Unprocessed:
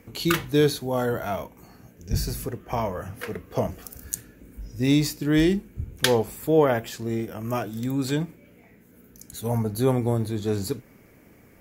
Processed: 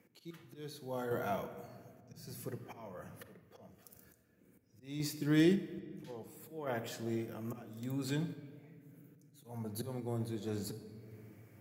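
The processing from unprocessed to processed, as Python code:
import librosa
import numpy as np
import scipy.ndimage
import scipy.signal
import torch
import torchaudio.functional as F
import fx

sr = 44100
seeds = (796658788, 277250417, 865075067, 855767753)

y = fx.auto_swell(x, sr, attack_ms=394.0)
y = scipy.signal.sosfilt(scipy.signal.butter(4, 100.0, 'highpass', fs=sr, output='sos'), y)
y = fx.room_shoebox(y, sr, seeds[0], volume_m3=3500.0, walls='mixed', distance_m=0.85)
y = fx.tremolo_random(y, sr, seeds[1], hz=1.8, depth_pct=55)
y = y * librosa.db_to_amplitude(-9.0)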